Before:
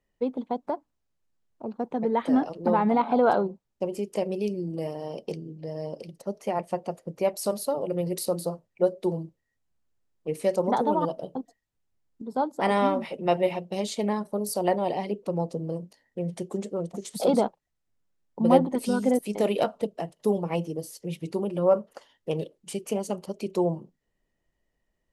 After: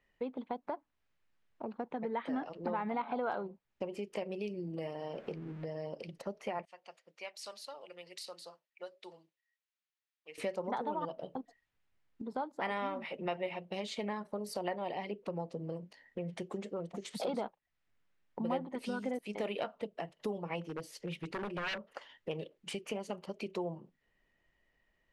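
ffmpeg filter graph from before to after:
ffmpeg -i in.wav -filter_complex "[0:a]asettb=1/sr,asplit=3[link_01][link_02][link_03];[link_01]atrim=end=5.134[link_04];[link_02]atrim=start=5.13:end=5.65,asetpts=PTS-STARTPTS,afade=type=in:duration=0.004:curve=qsin,afade=type=out:start_time=0.516:duration=0.004:curve=qsin,aeval=exprs='val(0)+0.5*0.00501*sgn(val(0))':channel_layout=same,highshelf=frequency=2200:gain=-11.5[link_05];[link_03]atrim=start=5.646[link_06];[link_04][link_05]acrossfade=duration=0.004:curve1=hsin:curve2=qsin[link_07];[link_07][link_06]acrossfade=duration=0.004:curve1=qsin:curve2=hsin,asettb=1/sr,asplit=3[link_08][link_09][link_10];[link_08]atrim=end=6.654[link_11];[link_09]atrim=start=6.65:end=10.38,asetpts=PTS-STARTPTS,afade=type=in:duration=0.004:curve=qsin,afade=type=out:start_time=3.726:duration=0.004:curve=qsin,highpass=140,lowpass=5400,aderivative[link_12];[link_10]atrim=start=10.376[link_13];[link_11][link_12]acrossfade=duration=0.004:curve1=hsin:curve2=qsin[link_14];[link_14][link_13]acrossfade=duration=0.004:curve1=qsin:curve2=hsin,asettb=1/sr,asplit=3[link_15][link_16][link_17];[link_15]atrim=end=20.614[link_18];[link_16]atrim=start=20.61:end=21.85,asetpts=PTS-STARTPTS,afade=type=in:duration=0.004:curve=qsin,afade=type=out:start_time=1.236:duration=0.004:curve=qsin,asubboost=boost=7:cutoff=54,aeval=exprs='0.0501*(abs(mod(val(0)/0.0501+3,4)-2)-1)':channel_layout=same[link_19];[link_17]atrim=start=21.846[link_20];[link_18][link_19]acrossfade=duration=0.004:curve1=hsin:curve2=qsin[link_21];[link_21][link_20]acrossfade=duration=0.004:curve1=qsin:curve2=hsin,lowpass=frequency=3400:poles=1,equalizer=frequency=2200:width=0.57:gain=11.5,acompressor=threshold=-39dB:ratio=2.5,volume=-1.5dB" out.wav

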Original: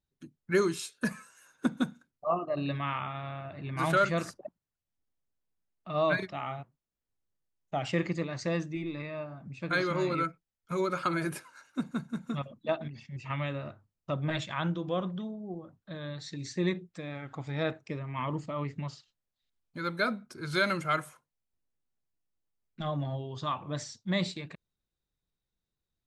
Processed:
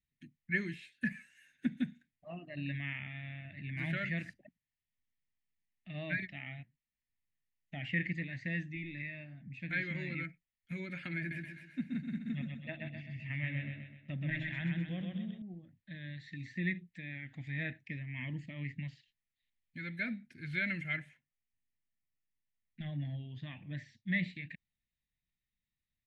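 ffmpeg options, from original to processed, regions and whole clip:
ffmpeg -i in.wav -filter_complex "[0:a]asettb=1/sr,asplit=3[link_01][link_02][link_03];[link_01]atrim=end=11.184[link_04];[link_02]atrim=start=11.18:end=15.42,asetpts=PTS-STARTPTS,afade=type=in:duration=0.004:curve=qsin,afade=type=out:start_time=4.236:duration=0.004:curve=qsin,highshelf=frequency=4400:gain=-10.5,aecho=1:1:127|254|381|508|635|762:0.668|0.294|0.129|0.0569|0.0251|0.011,atrim=end_sample=186984[link_05];[link_03]atrim=start=15.416[link_06];[link_04][link_05]acrossfade=duration=0.004:curve1=hsin:curve2=qsin[link_07];[link_07][link_06]acrossfade=duration=0.004:curve1=qsin:curve2=hsin,asettb=1/sr,asplit=3[link_08][link_09][link_10];[link_08]atrim=end=20.974[link_11];[link_09]atrim=start=20.97:end=24.06,asetpts=PTS-STARTPTS,afade=type=in:duration=0.004:curve=qsin,afade=type=out:start_time=3.086:duration=0.004:curve=qsin,lowpass=7600,highshelf=frequency=3700:gain=-8[link_12];[link_10]atrim=start=24.056[link_13];[link_11][link_12]acrossfade=duration=0.004:curve1=hsin:curve2=qsin[link_14];[link_14][link_13]acrossfade=duration=0.004:curve1=qsin:curve2=hsin,acrossover=split=2700[link_15][link_16];[link_16]acompressor=threshold=-55dB:ratio=4:attack=1:release=60[link_17];[link_15][link_17]amix=inputs=2:normalize=0,firequalizer=gain_entry='entry(250,0);entry(400,-17);entry(680,-14);entry(1200,-28);entry(1800,10);entry(5300,-9)':delay=0.05:min_phase=1,volume=-4dB" out.wav

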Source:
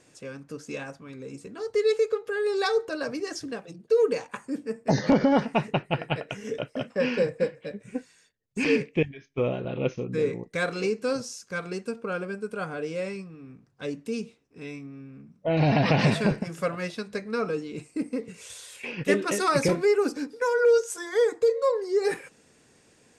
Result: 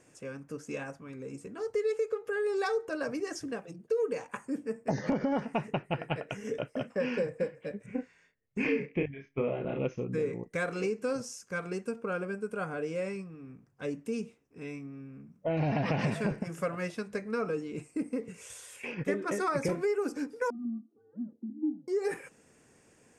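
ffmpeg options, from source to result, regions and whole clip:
ffmpeg -i in.wav -filter_complex "[0:a]asettb=1/sr,asplit=3[link_01][link_02][link_03];[link_01]atrim=end=7.864[link_04];[link_02]atrim=start=7.86:end=9.79,asetpts=PTS-STARTPTS,afade=type=in:duration=0.004:curve=qsin,afade=type=out:start_time=1.926:duration=0.004:curve=qsin,lowpass=3500,equalizer=frequency=2100:width_type=o:width=0.24:gain=6.5,asplit=2[link_05][link_06];[link_06]adelay=29,volume=-3dB[link_07];[link_05][link_07]amix=inputs=2:normalize=0,atrim=end_sample=85113[link_08];[link_03]atrim=start=9.786[link_09];[link_04][link_08]acrossfade=duration=0.004:curve1=hsin:curve2=qsin[link_10];[link_10][link_09]acrossfade=duration=0.004:curve1=qsin:curve2=hsin,asettb=1/sr,asplit=3[link_11][link_12][link_13];[link_11]atrim=end=18.944[link_14];[link_12]atrim=start=18.94:end=19.65,asetpts=PTS-STARTPTS,afade=type=in:duration=0.004:curve=qsin,afade=type=out:start_time=0.706:duration=0.004:curve=qsin,lowpass=frequency=3800:poles=1,bandreject=frequency=2800:width=6.2[link_15];[link_13]atrim=start=19.646[link_16];[link_14][link_15]acrossfade=duration=0.004:curve1=hsin:curve2=qsin[link_17];[link_17][link_16]acrossfade=duration=0.004:curve1=qsin:curve2=hsin,asettb=1/sr,asplit=3[link_18][link_19][link_20];[link_18]atrim=end=20.504[link_21];[link_19]atrim=start=20.5:end=21.88,asetpts=PTS-STARTPTS,afade=type=in:duration=0.004:curve=qsin,afade=type=out:start_time=1.376:duration=0.004:curve=qsin,afreqshift=-240,asuperpass=centerf=340:order=4:qfactor=2.9[link_22];[link_20]atrim=start=21.876[link_23];[link_21][link_22]acrossfade=duration=0.004:curve1=hsin:curve2=qsin[link_24];[link_24][link_23]acrossfade=duration=0.004:curve1=qsin:curve2=hsin,equalizer=frequency=4000:width=2.1:gain=-10.5,acompressor=threshold=-26dB:ratio=3,volume=-2dB" out.wav

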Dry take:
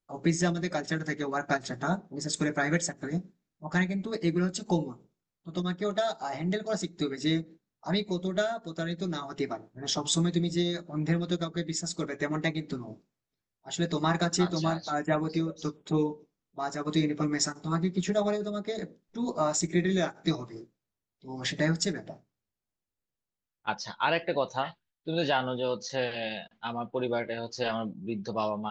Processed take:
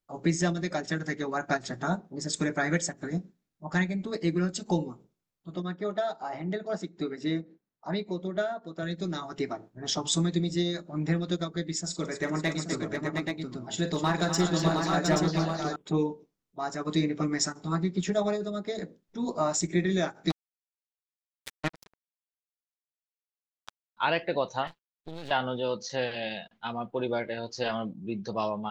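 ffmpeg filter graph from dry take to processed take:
ffmpeg -i in.wav -filter_complex "[0:a]asettb=1/sr,asplit=3[link_01][link_02][link_03];[link_01]atrim=end=5.554[link_04];[link_02]atrim=start=5.55:end=8.83,asetpts=PTS-STARTPTS,afade=type=in:duration=0.004:curve=qsin,afade=type=out:start_time=3.276:duration=0.004:curve=qsin,lowpass=frequency=1800:poles=1,lowshelf=frequency=120:gain=-10.5[link_05];[link_03]atrim=start=8.826[link_06];[link_04][link_05]acrossfade=duration=0.004:curve1=hsin:curve2=qsin[link_07];[link_07][link_06]acrossfade=duration=0.004:curve1=qsin:curve2=hsin,asettb=1/sr,asplit=3[link_08][link_09][link_10];[link_08]atrim=end=11.804[link_11];[link_09]atrim=start=11.8:end=15.76,asetpts=PTS-STARTPTS,afade=type=in:duration=0.004:curve=qsin,afade=type=out:start_time=3.956:duration=0.004:curve=qsin,aeval=exprs='clip(val(0),-1,0.075)':channel_layout=same,aecho=1:1:43|45|250|490|715|829:0.15|0.251|0.335|0.237|0.596|0.596,atrim=end_sample=174636[link_12];[link_10]atrim=start=15.756[link_13];[link_11][link_12]acrossfade=duration=0.004:curve1=hsin:curve2=qsin[link_14];[link_14][link_13]acrossfade=duration=0.004:curve1=qsin:curve2=hsin,asettb=1/sr,asplit=3[link_15][link_16][link_17];[link_15]atrim=end=20.304[link_18];[link_16]atrim=start=20.3:end=23.97,asetpts=PTS-STARTPTS,afade=type=in:duration=0.004:curve=qsin,afade=type=out:start_time=3.666:duration=0.004:curve=qsin,lowpass=4500,tremolo=f=11:d=0.98,acrusher=bits=3:mix=0:aa=0.5[link_19];[link_17]atrim=start=23.966[link_20];[link_18][link_19]acrossfade=duration=0.004:curve1=hsin:curve2=qsin[link_21];[link_21][link_20]acrossfade=duration=0.004:curve1=qsin:curve2=hsin,asettb=1/sr,asplit=3[link_22][link_23][link_24];[link_22]atrim=end=24.674[link_25];[link_23]atrim=start=24.67:end=25.31,asetpts=PTS-STARTPTS,afade=type=in:duration=0.004:curve=qsin,afade=type=out:start_time=0.636:duration=0.004:curve=qsin,acompressor=threshold=-33dB:ratio=12:attack=3.2:release=140:knee=1:detection=peak,aeval=exprs='max(val(0),0)':channel_layout=same[link_26];[link_24]atrim=start=25.306[link_27];[link_25][link_26]acrossfade=duration=0.004:curve1=hsin:curve2=qsin[link_28];[link_28][link_27]acrossfade=duration=0.004:curve1=qsin:curve2=hsin" out.wav

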